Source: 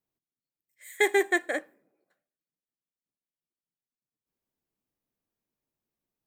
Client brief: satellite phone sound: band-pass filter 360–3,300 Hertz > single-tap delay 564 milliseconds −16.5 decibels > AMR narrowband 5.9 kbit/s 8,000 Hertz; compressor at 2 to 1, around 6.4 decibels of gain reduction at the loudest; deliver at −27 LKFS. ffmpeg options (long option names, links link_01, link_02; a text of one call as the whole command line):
ffmpeg -i in.wav -af "acompressor=threshold=-30dB:ratio=2,highpass=360,lowpass=3300,aecho=1:1:564:0.15,volume=7.5dB" -ar 8000 -c:a libopencore_amrnb -b:a 5900 out.amr